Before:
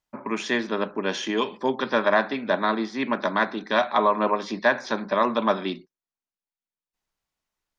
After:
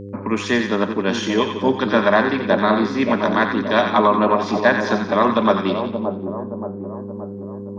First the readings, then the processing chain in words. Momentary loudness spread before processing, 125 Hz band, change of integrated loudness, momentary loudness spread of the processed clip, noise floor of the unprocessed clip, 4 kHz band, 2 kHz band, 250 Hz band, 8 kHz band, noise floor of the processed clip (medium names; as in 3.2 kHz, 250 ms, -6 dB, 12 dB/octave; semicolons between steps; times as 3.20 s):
7 LU, +12.5 dB, +6.0 dB, 13 LU, under -85 dBFS, +4.5 dB, +5.0 dB, +9.5 dB, no reading, -31 dBFS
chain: bass shelf 260 Hz +8.5 dB; mains buzz 100 Hz, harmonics 5, -37 dBFS -2 dB/octave; on a send: two-band feedback delay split 940 Hz, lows 575 ms, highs 89 ms, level -6.5 dB; on the sum: trim +3.5 dB